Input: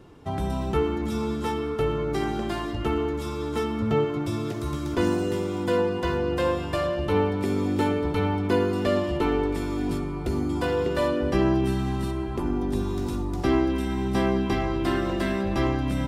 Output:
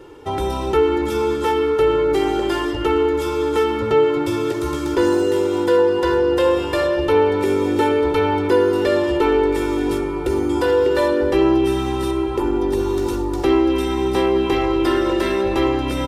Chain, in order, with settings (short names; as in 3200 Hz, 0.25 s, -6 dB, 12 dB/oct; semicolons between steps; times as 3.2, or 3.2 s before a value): resonant low shelf 210 Hz -7.5 dB, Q 1.5; comb 2.2 ms, depth 67%; in parallel at +2 dB: limiter -18.5 dBFS, peak gain reduction 10 dB